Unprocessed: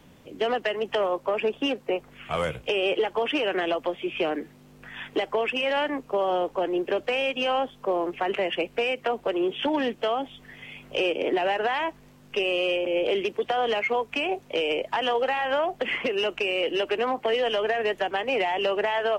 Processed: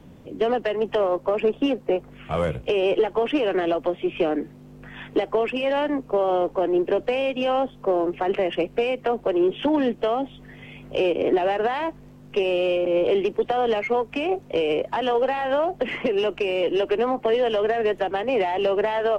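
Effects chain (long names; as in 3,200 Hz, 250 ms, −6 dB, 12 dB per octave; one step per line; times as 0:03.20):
tilt shelving filter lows +6 dB, about 820 Hz
in parallel at −10.5 dB: asymmetric clip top −32.5 dBFS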